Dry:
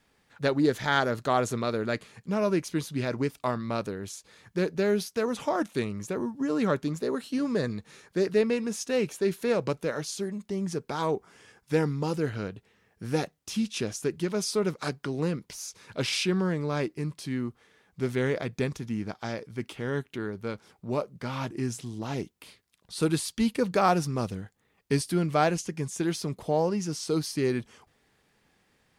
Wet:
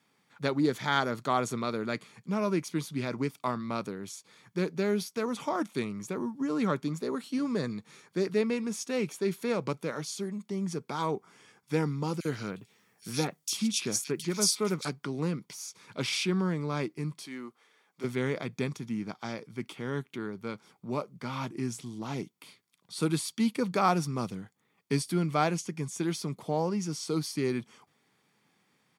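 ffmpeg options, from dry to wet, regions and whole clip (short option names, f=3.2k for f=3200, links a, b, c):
-filter_complex "[0:a]asettb=1/sr,asplit=3[a][b][c];[a]atrim=end=12.204[d];[b]atrim=start=12.2:end=14.85,asetpts=PTS-STARTPTS,afade=t=in:d=0.004:c=qsin,afade=t=out:st=2.646:d=0.004:c=qsin,highshelf=f=2.7k:g=11,acrossover=split=2500[e][f];[e]adelay=50[g];[g][f]amix=inputs=2:normalize=0,atrim=end_sample=116865[h];[c]atrim=start=14.846[i];[d][h]acrossfade=d=0.004:c1=hsin:c2=qsin[j];[j][i]acrossfade=d=0.004:c1=qsin:c2=hsin,asettb=1/sr,asplit=3[k][l][m];[k]atrim=end=17.234[n];[l]atrim=start=17.23:end=18.04,asetpts=PTS-STARTPTS,afade=t=in:d=0.004:c=qsin,afade=t=out:st=0.806:d=0.004:c=qsin,highpass=400,asoftclip=type=hard:threshold=-29.5dB[o];[m]atrim=start=18.036[p];[n][o]acrossfade=d=0.004:c1=hsin:c2=qsin[q];[q][p]acrossfade=d=0.004:c1=qsin:c2=hsin,highpass=f=130:w=0.5412,highpass=f=130:w=1.3066,aecho=1:1:0.9:0.31,volume=-2.5dB"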